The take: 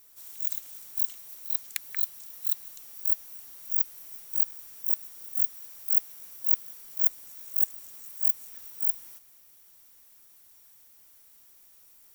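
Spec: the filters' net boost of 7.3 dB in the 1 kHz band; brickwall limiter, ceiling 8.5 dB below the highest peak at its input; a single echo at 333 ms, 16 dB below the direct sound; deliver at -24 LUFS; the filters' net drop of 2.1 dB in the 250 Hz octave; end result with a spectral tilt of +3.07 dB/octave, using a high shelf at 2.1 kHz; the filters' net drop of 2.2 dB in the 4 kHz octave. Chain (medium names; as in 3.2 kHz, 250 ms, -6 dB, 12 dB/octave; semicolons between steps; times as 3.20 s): peaking EQ 250 Hz -3.5 dB; peaking EQ 1 kHz +9 dB; treble shelf 2.1 kHz +3.5 dB; peaking EQ 4 kHz -6.5 dB; peak limiter -10 dBFS; delay 333 ms -16 dB; trim +2.5 dB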